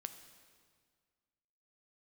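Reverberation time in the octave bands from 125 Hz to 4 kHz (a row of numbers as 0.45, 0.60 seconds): 2.0, 2.0, 1.8, 1.8, 1.7, 1.6 seconds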